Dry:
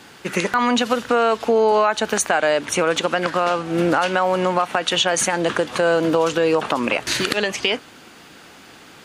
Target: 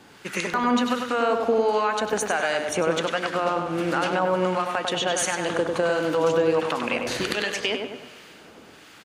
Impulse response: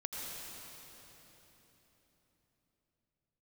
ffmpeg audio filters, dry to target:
-filter_complex "[0:a]asplit=2[s0][s1];[s1]adelay=98,lowpass=f=3600:p=1,volume=0.596,asplit=2[s2][s3];[s3]adelay=98,lowpass=f=3600:p=1,volume=0.51,asplit=2[s4][s5];[s5]adelay=98,lowpass=f=3600:p=1,volume=0.51,asplit=2[s6][s7];[s7]adelay=98,lowpass=f=3600:p=1,volume=0.51,asplit=2[s8][s9];[s9]adelay=98,lowpass=f=3600:p=1,volume=0.51,asplit=2[s10][s11];[s11]adelay=98,lowpass=f=3600:p=1,volume=0.51,asplit=2[s12][s13];[s13]adelay=98,lowpass=f=3600:p=1,volume=0.51[s14];[s0][s2][s4][s6][s8][s10][s12][s14]amix=inputs=8:normalize=0,asplit=2[s15][s16];[1:a]atrim=start_sample=2205[s17];[s16][s17]afir=irnorm=-1:irlink=0,volume=0.141[s18];[s15][s18]amix=inputs=2:normalize=0,acrossover=split=1100[s19][s20];[s19]aeval=exprs='val(0)*(1-0.5/2+0.5/2*cos(2*PI*1.4*n/s))':c=same[s21];[s20]aeval=exprs='val(0)*(1-0.5/2-0.5/2*cos(2*PI*1.4*n/s))':c=same[s22];[s21][s22]amix=inputs=2:normalize=0,volume=0.596"

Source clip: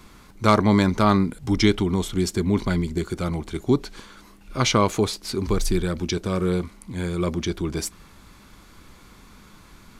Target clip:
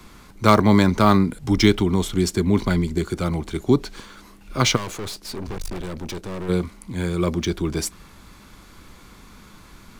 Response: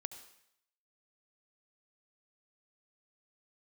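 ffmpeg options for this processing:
-filter_complex "[0:a]asplit=3[s0][s1][s2];[s0]afade=t=out:st=4.75:d=0.02[s3];[s1]aeval=exprs='(tanh(35.5*val(0)+0.65)-tanh(0.65))/35.5':c=same,afade=t=in:st=4.75:d=0.02,afade=t=out:st=6.48:d=0.02[s4];[s2]afade=t=in:st=6.48:d=0.02[s5];[s3][s4][s5]amix=inputs=3:normalize=0,acrossover=split=140|1000[s6][s7][s8];[s8]acrusher=bits=5:mode=log:mix=0:aa=0.000001[s9];[s6][s7][s9]amix=inputs=3:normalize=0,volume=1.33"

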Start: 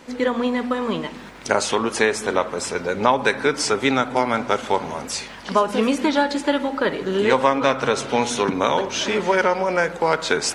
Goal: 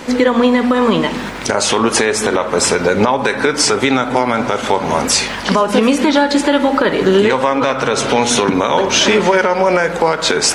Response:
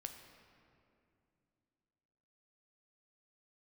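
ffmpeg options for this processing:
-filter_complex "[0:a]acompressor=threshold=0.0708:ratio=6,asplit=2[s0][s1];[1:a]atrim=start_sample=2205,atrim=end_sample=3528[s2];[s1][s2]afir=irnorm=-1:irlink=0,volume=1.26[s3];[s0][s3]amix=inputs=2:normalize=0,alimiter=level_in=3.76:limit=0.891:release=50:level=0:latency=1,volume=0.891"

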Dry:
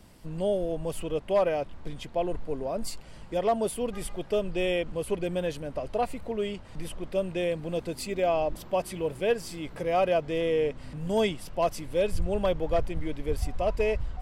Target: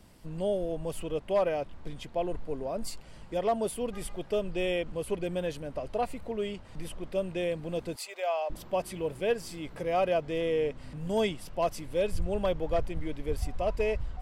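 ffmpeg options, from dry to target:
-filter_complex "[0:a]asettb=1/sr,asplit=3[s0][s1][s2];[s0]atrim=end=7.964[s3];[s1]atrim=start=7.96:end=8.5,asetpts=PTS-STARTPTS,afade=t=in:d=0.004:c=qsin,afade=t=out:st=0.536:d=0.004:c=qsin,highpass=f=600:w=0.5412,highpass=f=600:w=1.3066[s4];[s2]atrim=start=8.496[s5];[s3][s4]acrossfade=d=0.004:c1=hsin:c2=qsin[s6];[s6][s5]acrossfade=d=0.004:c1=qsin:c2=hsin,volume=0.75"

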